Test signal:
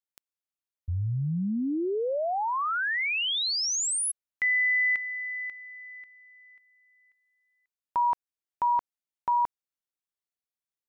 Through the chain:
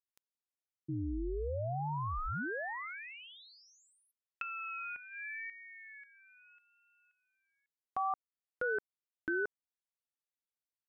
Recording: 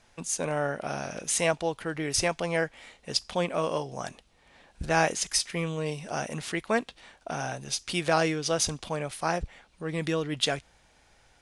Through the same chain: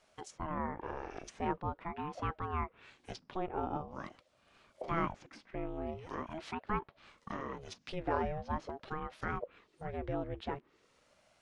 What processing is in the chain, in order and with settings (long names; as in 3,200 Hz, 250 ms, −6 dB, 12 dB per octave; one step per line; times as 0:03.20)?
treble cut that deepens with the level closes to 1,200 Hz, closed at −27.5 dBFS
tape wow and flutter 0.71 Hz 45 cents
ring modulator whose carrier an LFO sweeps 410 Hz, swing 55%, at 0.44 Hz
level −5 dB